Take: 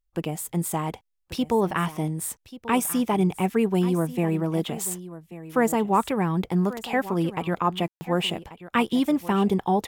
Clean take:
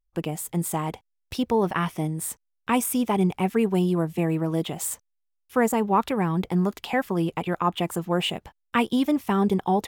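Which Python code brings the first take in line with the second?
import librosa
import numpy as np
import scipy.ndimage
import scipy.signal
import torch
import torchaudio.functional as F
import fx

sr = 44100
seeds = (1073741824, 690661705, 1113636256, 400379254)

y = fx.fix_ambience(x, sr, seeds[0], print_start_s=0.89, print_end_s=1.39, start_s=7.88, end_s=8.01)
y = fx.fix_echo_inverse(y, sr, delay_ms=1137, level_db=-15.5)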